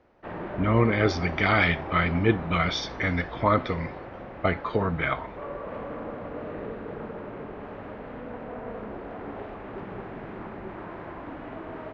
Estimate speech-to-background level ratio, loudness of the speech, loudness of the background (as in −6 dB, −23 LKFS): 12.5 dB, −25.5 LKFS, −38.0 LKFS